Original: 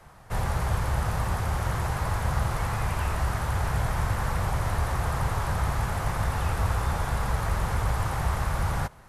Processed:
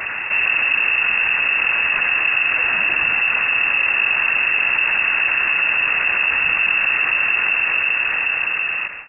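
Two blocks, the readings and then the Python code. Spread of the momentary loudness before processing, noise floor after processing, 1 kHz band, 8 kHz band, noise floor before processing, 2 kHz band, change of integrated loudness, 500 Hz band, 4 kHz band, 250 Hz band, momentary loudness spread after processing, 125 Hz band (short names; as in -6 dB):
1 LU, -25 dBFS, +2.0 dB, under -30 dB, -49 dBFS, +22.0 dB, +13.0 dB, -1.5 dB, +17.0 dB, n/a, 2 LU, under -20 dB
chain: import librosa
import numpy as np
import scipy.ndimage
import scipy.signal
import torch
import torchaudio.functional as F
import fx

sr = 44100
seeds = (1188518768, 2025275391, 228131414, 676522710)

y = fx.fade_out_tail(x, sr, length_s=1.88)
y = fx.freq_invert(y, sr, carrier_hz=2700)
y = fx.env_flatten(y, sr, amount_pct=70)
y = y * 10.0 ** (4.5 / 20.0)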